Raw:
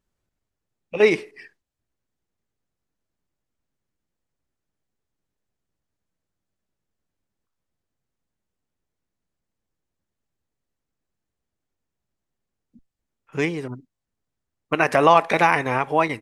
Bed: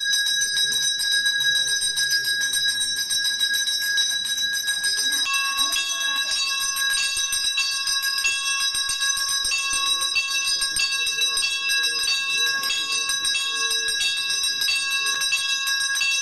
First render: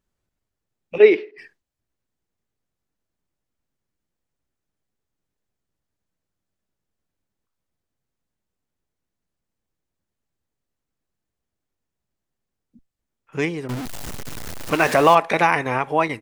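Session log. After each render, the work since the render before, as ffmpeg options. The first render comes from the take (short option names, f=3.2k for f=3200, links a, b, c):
-filter_complex "[0:a]asettb=1/sr,asplit=3[a][b][c];[a]atrim=end=0.984[d];[b]atrim=start=0.98:end=1.38,asetpts=PTS-STARTPTS,afade=t=in:d=0.004:c=qsin,afade=t=out:st=0.396:d=0.004:c=qsin,highpass=f=250:w=0.5412,highpass=f=250:w=1.3066,equalizer=f=390:t=q:w=4:g=8,equalizer=f=790:t=q:w=4:g=-4,equalizer=f=1.1k:t=q:w=4:g=-8,lowpass=f=3.8k:w=0.5412,lowpass=f=3.8k:w=1.3066[e];[c]atrim=start=1.376[f];[d][e]acrossfade=d=0.004:c1=hsin:c2=qsin[g];[g][f]acrossfade=d=0.004:c1=qsin:c2=hsin,asettb=1/sr,asplit=3[h][i][j];[h]atrim=end=13.694[k];[i]atrim=start=13.69:end=15.15,asetpts=PTS-STARTPTS,afade=t=in:d=0.004:c=qsin,afade=t=out:st=1.456:d=0.004:c=qsin,aeval=exprs='val(0)+0.5*0.0668*sgn(val(0))':c=same[l];[j]atrim=start=15.146[m];[k][l]acrossfade=d=0.004:c1=hsin:c2=qsin[n];[n][m]acrossfade=d=0.004:c1=qsin:c2=hsin"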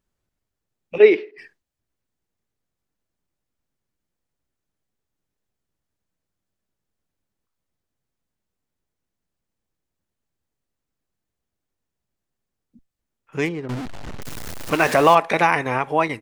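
-filter_complex "[0:a]asettb=1/sr,asplit=3[a][b][c];[a]atrim=end=13.454[d];[b]atrim=start=13.45:end=14.22,asetpts=PTS-STARTPTS,afade=t=in:d=0.004:c=qsin,afade=t=out:st=0.766:d=0.004:c=qsin,adynamicsmooth=sensitivity=5:basefreq=1.8k[e];[c]atrim=start=14.216[f];[d][e]acrossfade=d=0.004:c1=hsin:c2=qsin[g];[g][f]acrossfade=d=0.004:c1=qsin:c2=hsin"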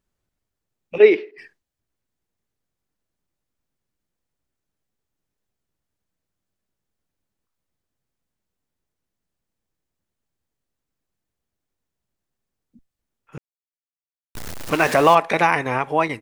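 -filter_complex "[0:a]asplit=3[a][b][c];[a]atrim=end=13.38,asetpts=PTS-STARTPTS,afade=t=out:st=13.376:d=0.004:c=hsin[d];[b]atrim=start=13.38:end=14.35,asetpts=PTS-STARTPTS,volume=0[e];[c]atrim=start=14.35,asetpts=PTS-STARTPTS,afade=t=in:d=0.004:c=hsin[f];[d][e][f]concat=n=3:v=0:a=1"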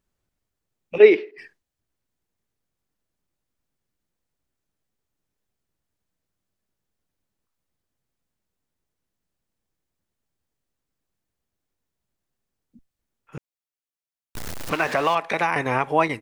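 -filter_complex "[0:a]asettb=1/sr,asplit=3[a][b][c];[a]atrim=end=14.694[d];[b]atrim=start=14.69:end=15.56,asetpts=PTS-STARTPTS,afade=t=in:d=0.004:c=qsin,afade=t=out:st=0.866:d=0.004:c=qsin,acrossover=split=710|1500|5600[e][f][g][h];[e]acompressor=threshold=-29dB:ratio=3[i];[f]acompressor=threshold=-25dB:ratio=3[j];[g]acompressor=threshold=-28dB:ratio=3[k];[h]acompressor=threshold=-51dB:ratio=3[l];[i][j][k][l]amix=inputs=4:normalize=0[m];[c]atrim=start=15.556[n];[d][m]acrossfade=d=0.004:c1=hsin:c2=qsin[o];[o][n]acrossfade=d=0.004:c1=qsin:c2=hsin"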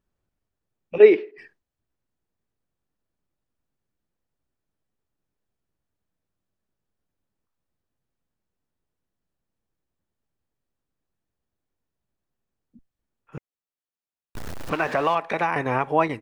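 -af "highshelf=f=2.9k:g=-9.5,bandreject=f=2.1k:w=24"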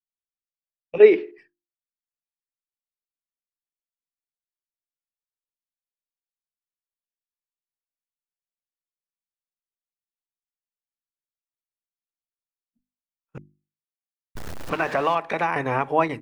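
-af "agate=range=-33dB:threshold=-36dB:ratio=3:detection=peak,bandreject=f=50:t=h:w=6,bandreject=f=100:t=h:w=6,bandreject=f=150:t=h:w=6,bandreject=f=200:t=h:w=6,bandreject=f=250:t=h:w=6,bandreject=f=300:t=h:w=6,bandreject=f=350:t=h:w=6"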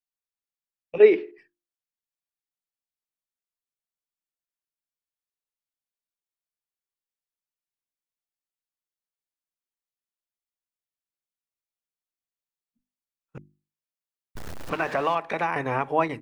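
-af "volume=-2.5dB"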